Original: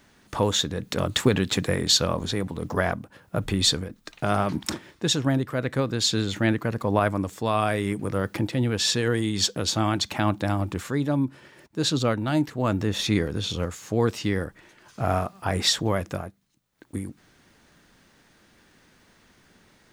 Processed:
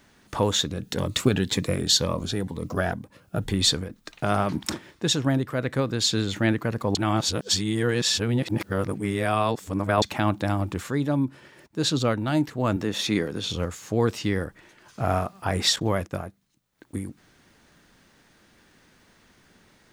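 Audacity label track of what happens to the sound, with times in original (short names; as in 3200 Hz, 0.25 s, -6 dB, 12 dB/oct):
0.660000	3.530000	cascading phaser rising 2 Hz
6.950000	10.020000	reverse
12.760000	13.470000	HPF 160 Hz
15.760000	16.250000	gate -40 dBFS, range -12 dB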